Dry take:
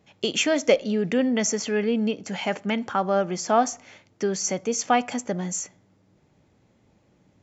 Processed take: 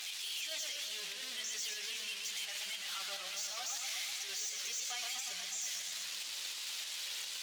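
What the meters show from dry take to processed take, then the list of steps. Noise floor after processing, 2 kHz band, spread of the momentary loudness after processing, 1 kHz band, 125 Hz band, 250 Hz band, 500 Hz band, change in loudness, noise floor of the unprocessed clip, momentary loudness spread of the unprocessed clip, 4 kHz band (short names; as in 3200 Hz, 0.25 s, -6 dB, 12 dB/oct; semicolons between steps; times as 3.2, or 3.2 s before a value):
-44 dBFS, -10.5 dB, 2 LU, -25.0 dB, under -35 dB, under -40 dB, -32.5 dB, -13.5 dB, -63 dBFS, 7 LU, -3.0 dB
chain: zero-crossing step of -23 dBFS; chorus voices 6, 0.29 Hz, delay 11 ms, depth 1.5 ms; high shelf 3000 Hz +10.5 dB; in parallel at -1.5 dB: negative-ratio compressor -29 dBFS; on the sum: band-pass 3400 Hz, Q 1.3; step gate "x.xx.xx.xx" 147 bpm -12 dB; soft clip -24.5 dBFS, distortion -10 dB; tilt +3 dB/oct; limiter -25.5 dBFS, peak gain reduction 14 dB; warbling echo 0.121 s, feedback 73%, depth 153 cents, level -5 dB; gain -7.5 dB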